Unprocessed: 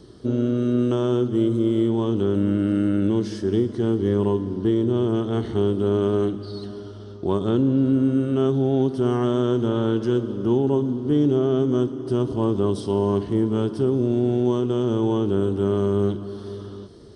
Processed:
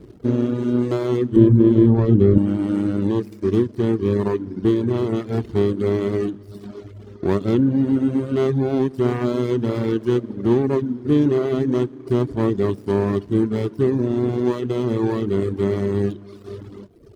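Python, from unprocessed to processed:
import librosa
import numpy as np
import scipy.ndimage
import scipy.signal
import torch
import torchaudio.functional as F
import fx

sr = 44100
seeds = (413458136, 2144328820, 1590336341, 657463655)

y = scipy.ndimage.median_filter(x, 41, mode='constant')
y = fx.dereverb_blind(y, sr, rt60_s=1.2)
y = fx.tilt_eq(y, sr, slope=-3.5, at=(1.36, 2.38))
y = y * 10.0 ** (4.5 / 20.0)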